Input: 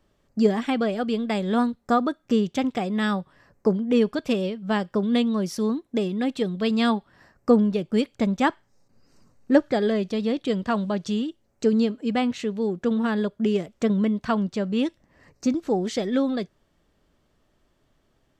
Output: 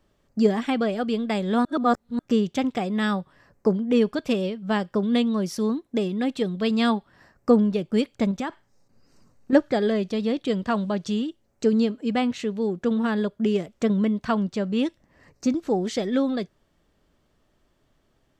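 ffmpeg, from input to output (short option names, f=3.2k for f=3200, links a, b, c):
-filter_complex "[0:a]asettb=1/sr,asplit=3[a][b][c];[a]atrim=end=8.314[d];[b]atrim=start=8.31:end=9.53,asetpts=PTS-STARTPTS,afade=t=in:d=0.004:c=qsin,afade=t=out:st=1.216:d=0.004:c=qsin,acompressor=threshold=-24dB:ratio=10:attack=3.2:release=140:knee=1:detection=peak[e];[c]atrim=start=9.526[f];[d][e]acrossfade=d=0.004:c1=hsin:c2=qsin[g];[g][f]acrossfade=d=0.004:c1=qsin:c2=hsin,asplit=3[h][i][j];[h]atrim=end=1.652[k];[i]atrim=start=1.648:end=2.192,asetpts=PTS-STARTPTS,areverse[l];[j]atrim=start=2.188[m];[k][l]acrossfade=d=0.004:c1=hsin:c2=hsin[n];[n][m]acrossfade=d=0.004:c1=hsin:c2=hsin"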